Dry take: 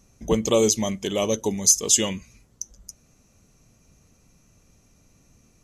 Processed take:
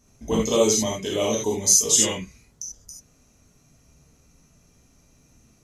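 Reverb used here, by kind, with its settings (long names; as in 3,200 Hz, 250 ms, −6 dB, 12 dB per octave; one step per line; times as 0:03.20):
reverb whose tail is shaped and stops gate 110 ms flat, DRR −5 dB
level −5 dB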